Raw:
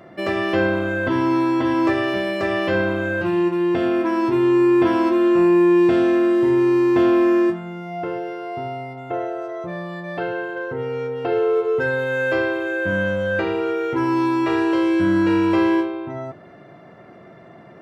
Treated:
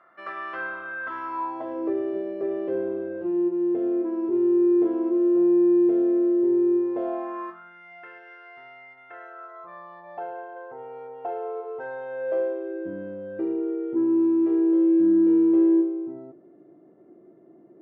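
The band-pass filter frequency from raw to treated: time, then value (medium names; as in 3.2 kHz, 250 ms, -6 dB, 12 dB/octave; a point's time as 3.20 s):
band-pass filter, Q 4.5
1.27 s 1.3 kHz
1.92 s 400 Hz
6.76 s 400 Hz
7.81 s 1.8 kHz
9.05 s 1.8 kHz
10.25 s 770 Hz
12.03 s 770 Hz
12.91 s 330 Hz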